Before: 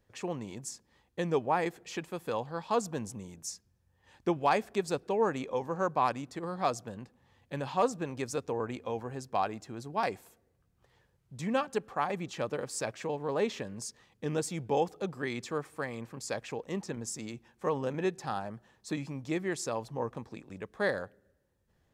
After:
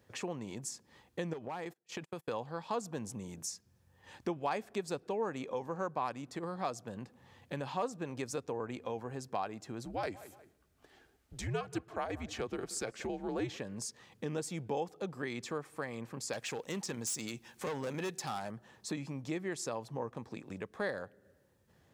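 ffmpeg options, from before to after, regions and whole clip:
-filter_complex "[0:a]asettb=1/sr,asplit=3[a][b][c];[a]atrim=end=1.334[d];[b]atrim=start=1.33:end=2.28,asetpts=PTS-STARTPTS,afade=t=in:d=0.004:c=qsin,afade=t=out:st=0.946:d=0.004:c=qsin,agate=range=-35dB:threshold=-43dB:ratio=16:release=100:detection=peak,asoftclip=type=hard:threshold=-23dB,acompressor=threshold=-36dB:ratio=10:attack=3.2:release=140:knee=1:detection=peak[e];[c]atrim=start=2.276[f];[d][e]acrossfade=d=0.004:c1=hsin:c2=qsin[g];[g][f]acrossfade=d=0.004:c1=qsin:c2=hsin,asettb=1/sr,asplit=3[h][i][j];[h]atrim=end=9.854[k];[i]atrim=start=9.85:end=13.57,asetpts=PTS-STARTPTS,afade=t=in:d=0.004:c=qsin,afade=t=out:st=3.716:d=0.004:c=qsin,bandreject=f=1.1k:w=8.9,afreqshift=-100,asplit=2[l][m];[m]adelay=179,lowpass=f=3.4k:p=1,volume=-20dB,asplit=2[n][o];[o]adelay=179,lowpass=f=3.4k:p=1,volume=0.22[p];[l][n][p]amix=inputs=3:normalize=0,atrim=end_sample=164052[q];[j]atrim=start=13.566[r];[k][q]acrossfade=d=0.004:c1=hsin:c2=qsin[s];[s][r]acrossfade=d=0.004:c1=qsin:c2=hsin,asettb=1/sr,asplit=3[t][u][v];[t]atrim=end=16.334[w];[u]atrim=start=16.33:end=18.51,asetpts=PTS-STARTPTS,afade=t=in:d=0.004:c=qsin,afade=t=out:st=2.176:d=0.004:c=qsin,highshelf=f=2.3k:g=11.5,asoftclip=type=hard:threshold=-30dB[x];[v]atrim=start=18.506[y];[w][x]acrossfade=d=0.004:c1=hsin:c2=qsin[z];[z][y]acrossfade=d=0.004:c1=qsin:c2=hsin,highpass=87,acompressor=threshold=-50dB:ratio=2,volume=6.5dB"

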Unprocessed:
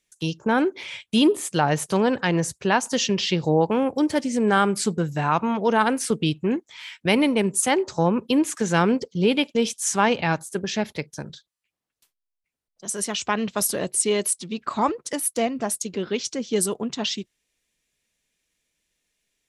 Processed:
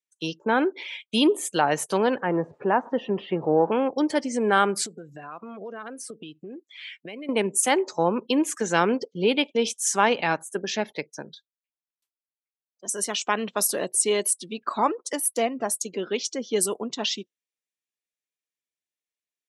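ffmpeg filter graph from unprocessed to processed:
-filter_complex "[0:a]asettb=1/sr,asplit=3[a][b][c];[a]atrim=end=2.224[d];[b]atrim=start=2.22:end=3.72,asetpts=PTS-STARTPTS,afade=t=in:d=0.004:c=qsin,afade=t=out:st=1.496:d=0.004:c=qsin,aeval=exprs='val(0)+0.5*0.0299*sgn(val(0))':c=same,lowpass=1.2k[e];[c]atrim=start=3.716[f];[d][e]acrossfade=d=0.004:c1=hsin:c2=qsin[g];[g][f]acrossfade=d=0.004:c1=qsin:c2=hsin,asettb=1/sr,asplit=3[h][i][j];[h]atrim=end=4.864[k];[i]atrim=start=4.86:end=7.29,asetpts=PTS-STARTPTS,afade=t=in:d=0.004:c=qsin,afade=t=out:st=2.426:d=0.004:c=qsin,bandreject=f=900:w=5.9,acompressor=threshold=-32dB:ratio=12:attack=3.2:release=140:knee=1:detection=peak[l];[j]atrim=start=7.286[m];[k][l]acrossfade=d=0.004:c1=hsin:c2=qsin[n];[n][m]acrossfade=d=0.004:c1=qsin:c2=hsin,highpass=280,afftdn=nr=20:nf=-43"

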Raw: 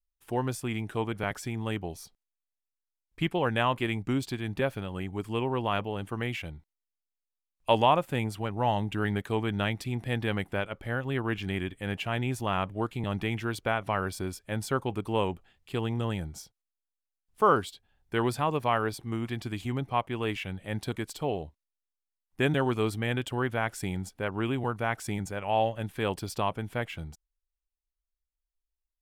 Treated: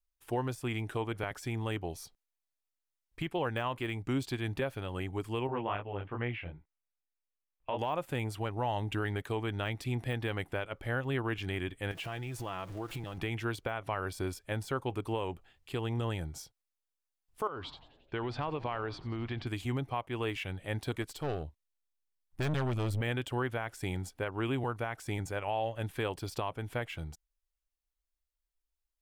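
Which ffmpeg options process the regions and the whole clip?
-filter_complex "[0:a]asettb=1/sr,asplit=3[a][b][c];[a]atrim=end=5.474[d];[b]atrim=start=5.47:end=7.79,asetpts=PTS-STARTPTS,afade=t=in:d=0.004:c=qsin,afade=t=out:st=2.316:d=0.004:c=qsin,flanger=delay=16.5:depth=6.6:speed=2.5,lowpass=f=2.8k:w=0.5412,lowpass=f=2.8k:w=1.3066[e];[c]atrim=start=7.786[f];[d][e]acrossfade=d=0.004:c1=hsin:c2=qsin[g];[g][f]acrossfade=d=0.004:c1=qsin:c2=hsin,asettb=1/sr,asplit=3[h][i][j];[h]atrim=end=11.914[k];[i]atrim=start=11.91:end=13.18,asetpts=PTS-STARTPTS,afade=t=in:d=0.004:c=qsin,afade=t=out:st=1.266:d=0.004:c=qsin,aeval=exprs='val(0)+0.5*0.00794*sgn(val(0))':c=same,acompressor=threshold=-34dB:ratio=6:attack=3.2:release=140:knee=1:detection=peak,aecho=1:1:6:0.37,atrim=end_sample=56007[l];[j]atrim=start=13.176[m];[k][l]acrossfade=d=0.004:c1=hsin:c2=qsin[n];[n][m]acrossfade=d=0.004:c1=qsin:c2=hsin,asettb=1/sr,asplit=3[o][p][q];[o]atrim=end=17.474[r];[p]atrim=start=17.47:end=19.47,asetpts=PTS-STARTPTS,afade=t=in:d=0.004:c=qsin,afade=t=out:st=1.996:d=0.004:c=qsin,lowpass=f=4.5k:w=0.5412,lowpass=f=4.5k:w=1.3066,acompressor=threshold=-29dB:ratio=16:attack=3.2:release=140:knee=1:detection=peak,asplit=7[s][t][u][v][w][x][y];[t]adelay=89,afreqshift=-130,volume=-18dB[z];[u]adelay=178,afreqshift=-260,volume=-22.3dB[aa];[v]adelay=267,afreqshift=-390,volume=-26.6dB[ab];[w]adelay=356,afreqshift=-520,volume=-30.9dB[ac];[x]adelay=445,afreqshift=-650,volume=-35.2dB[ad];[y]adelay=534,afreqshift=-780,volume=-39.5dB[ae];[s][z][aa][ab][ac][ad][ae]amix=inputs=7:normalize=0,atrim=end_sample=88200[af];[q]atrim=start=19.466[ag];[r][af]acrossfade=d=0.004:c1=hsin:c2=qsin[ah];[ah][ag]acrossfade=d=0.004:c1=qsin:c2=hsin,asettb=1/sr,asplit=3[ai][aj][ak];[ai]atrim=end=21.024[al];[aj]atrim=start=21.02:end=23.01,asetpts=PTS-STARTPTS,afade=t=in:d=0.004:c=qsin,afade=t=out:st=1.986:d=0.004:c=qsin,asubboost=boost=5:cutoff=240,aeval=exprs='(tanh(25.1*val(0)+0.5)-tanh(0.5))/25.1':c=same[am];[ak]atrim=start=23.006[an];[al][am]acrossfade=d=0.004:c1=hsin:c2=qsin[ao];[ao][an]acrossfade=d=0.004:c1=qsin:c2=hsin,deesser=0.9,equalizer=f=200:t=o:w=0.32:g=-10,alimiter=limit=-23dB:level=0:latency=1:release=244"

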